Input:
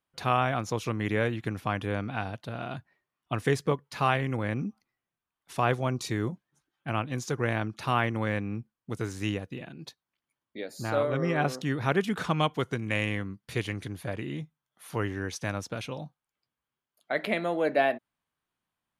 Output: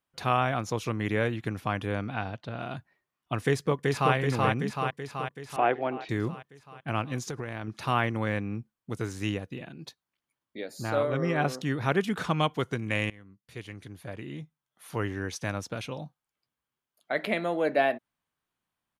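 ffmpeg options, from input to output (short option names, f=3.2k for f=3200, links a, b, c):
-filter_complex "[0:a]asettb=1/sr,asplit=3[a][b][c];[a]atrim=end=2.144[d];[b]atrim=start=2.14:end=2.59,asetpts=PTS-STARTPTS,afade=t=in:d=0.004:c=qsin,afade=t=out:st=0.446:d=0.004:c=qsin,lowpass=5.4k[e];[c]atrim=start=2.586[f];[d][e]acrossfade=d=0.004:c1=hsin:c2=qsin[g];[g][f]acrossfade=d=0.004:c1=qsin:c2=hsin,asplit=2[h][i];[i]afade=t=in:st=3.45:d=0.01,afade=t=out:st=4.14:d=0.01,aecho=0:1:380|760|1140|1520|1900|2280|2660|3040|3420|3800|4180:0.794328|0.516313|0.335604|0.218142|0.141793|0.0921652|0.0599074|0.0389398|0.0253109|0.0164521|0.0106938[j];[h][j]amix=inputs=2:normalize=0,asettb=1/sr,asplit=3[k][l][m];[k]atrim=end=5.564[n];[l]atrim=start=5.56:end=6.09,asetpts=PTS-STARTPTS,afade=t=in:d=0.004:c=qsin,afade=t=out:st=0.526:d=0.004:c=qsin,highpass=310,equalizer=f=320:t=q:w=4:g=8,equalizer=f=740:t=q:w=4:g=6,equalizer=f=1.1k:t=q:w=4:g=-5,lowpass=f=2.9k:w=0.5412,lowpass=f=2.9k:w=1.3066[o];[m]atrim=start=6.086[p];[n][o]acrossfade=d=0.004:c1=hsin:c2=qsin[q];[q][p]acrossfade=d=0.004:c1=qsin:c2=hsin,asettb=1/sr,asplit=3[r][s][t];[r]atrim=end=7.264[u];[s]atrim=start=7.26:end=7.68,asetpts=PTS-STARTPTS,afade=t=in:d=0.004:c=qsin,afade=t=out:st=0.416:d=0.004:c=qsin,acompressor=threshold=-30dB:ratio=10:attack=3.2:release=140:knee=1:detection=peak[v];[t]atrim=start=7.676[w];[u][v]acrossfade=d=0.004:c1=hsin:c2=qsin[x];[x][w]acrossfade=d=0.004:c1=qsin:c2=hsin,asplit=2[y][z];[y]atrim=end=13.1,asetpts=PTS-STARTPTS,afade=t=out:st=13.096:d=0.004:c=hsin:silence=0.0841395[aa];[z]atrim=start=13.1,asetpts=PTS-STARTPTS,afade=t=in:d=2.03:silence=0.0841395[ab];[aa][ab]concat=n=2:v=0:a=1"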